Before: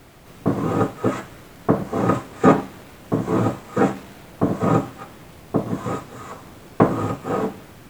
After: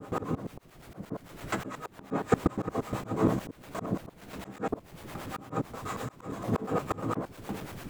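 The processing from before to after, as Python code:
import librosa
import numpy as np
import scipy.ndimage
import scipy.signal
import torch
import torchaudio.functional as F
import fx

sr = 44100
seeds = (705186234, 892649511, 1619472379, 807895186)

y = fx.block_reorder(x, sr, ms=117.0, group=8)
y = fx.auto_swell(y, sr, attack_ms=417.0)
y = fx.harmonic_tremolo(y, sr, hz=8.9, depth_pct=70, crossover_hz=460.0)
y = y * librosa.db_to_amplitude(5.0)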